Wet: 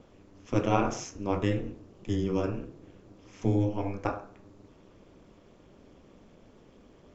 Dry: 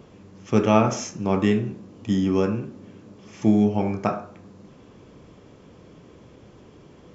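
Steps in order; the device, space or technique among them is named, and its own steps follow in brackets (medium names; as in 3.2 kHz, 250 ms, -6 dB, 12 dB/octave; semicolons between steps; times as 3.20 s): alien voice (ring modulator 100 Hz; flange 1 Hz, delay 1.5 ms, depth 6.8 ms, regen -79%)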